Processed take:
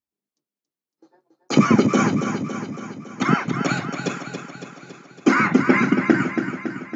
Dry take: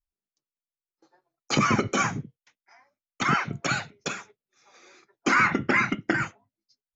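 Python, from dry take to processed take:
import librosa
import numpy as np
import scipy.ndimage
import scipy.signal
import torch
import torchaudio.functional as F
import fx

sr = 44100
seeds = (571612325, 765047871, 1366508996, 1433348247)

y = scipy.signal.sosfilt(scipy.signal.butter(2, 130.0, 'highpass', fs=sr, output='sos'), x)
y = fx.peak_eq(y, sr, hz=250.0, db=12.5, octaves=2.5)
y = fx.echo_feedback(y, sr, ms=279, feedback_pct=59, wet_db=-7.5)
y = y * librosa.db_to_amplitude(-1.0)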